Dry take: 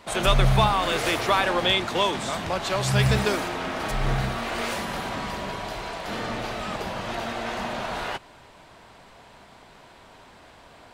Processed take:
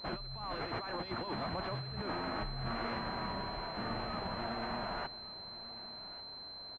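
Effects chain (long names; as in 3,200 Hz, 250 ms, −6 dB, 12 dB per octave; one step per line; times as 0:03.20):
dynamic equaliser 500 Hz, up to −4 dB, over −39 dBFS, Q 1.4
compressor whose output falls as the input rises −29 dBFS, ratio −1
phase-vocoder stretch with locked phases 0.62×
single-tap delay 1,142 ms −17 dB
switching amplifier with a slow clock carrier 4,100 Hz
level −8 dB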